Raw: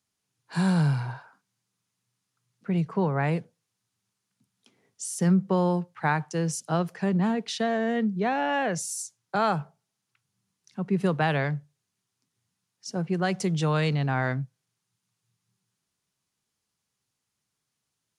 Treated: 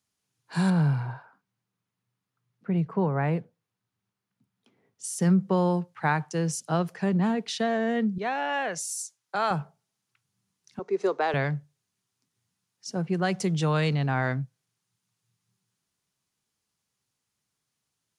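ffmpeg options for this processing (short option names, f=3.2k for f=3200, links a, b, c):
-filter_complex "[0:a]asettb=1/sr,asplit=3[a][b][c];[a]atrim=end=0.704[d];[b]atrim=start=0.7:end=5.04,asetpts=PTS-STARTPTS,afade=t=in:d=0.004:c=qsin,afade=t=out:st=4.336:d=0.004:c=qsin,equalizer=f=7.6k:t=o:w=2.2:g=-13[e];[c]atrim=start=5.036[f];[d][e]acrossfade=d=0.004:c1=hsin:c2=qsin[g];[g][f]acrossfade=d=0.004:c1=qsin:c2=hsin,asettb=1/sr,asplit=3[h][i][j];[h]atrim=end=8.184[k];[i]atrim=start=8.18:end=9.51,asetpts=PTS-STARTPTS,afade=t=in:d=0.004:c=qsin,afade=t=out:st=1.326:d=0.004:c=qsin,highpass=f=630:p=1[l];[j]atrim=start=9.506[m];[k][l]acrossfade=d=0.004:c1=hsin:c2=qsin[n];[n][m]acrossfade=d=0.004:c1=qsin:c2=hsin,asettb=1/sr,asplit=3[o][p][q];[o]atrim=end=10.794[r];[p]atrim=start=10.79:end=11.34,asetpts=PTS-STARTPTS,afade=t=in:d=0.004:c=qsin,afade=t=out:st=0.546:d=0.004:c=qsin,highpass=f=350:w=0.5412,highpass=f=350:w=1.3066,equalizer=f=400:t=q:w=4:g=7,equalizer=f=1.7k:t=q:w=4:g=-4,equalizer=f=2.9k:t=q:w=4:g=-9,equalizer=f=6.2k:t=q:w=4:g=5,lowpass=f=7.4k:w=0.5412,lowpass=f=7.4k:w=1.3066[s];[q]atrim=start=11.336[t];[r][s]acrossfade=d=0.004:c1=hsin:c2=qsin[u];[u][t]acrossfade=d=0.004:c1=qsin:c2=hsin"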